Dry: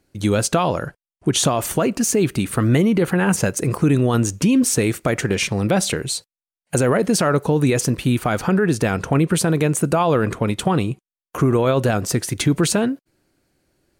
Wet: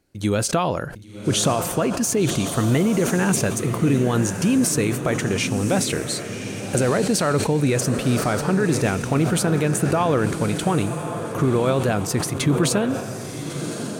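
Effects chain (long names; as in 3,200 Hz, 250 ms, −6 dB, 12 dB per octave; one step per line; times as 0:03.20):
feedback delay with all-pass diffusion 1,096 ms, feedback 40%, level −8 dB
level that may fall only so fast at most 75 dB per second
level −3 dB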